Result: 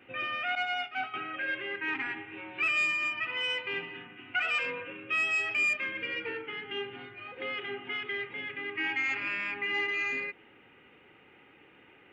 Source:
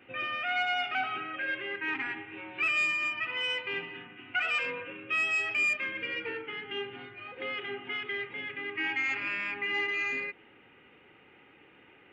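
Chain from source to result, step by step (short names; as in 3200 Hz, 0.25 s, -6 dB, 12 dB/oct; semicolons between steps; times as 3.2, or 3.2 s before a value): 0.55–1.14 expander -26 dBFS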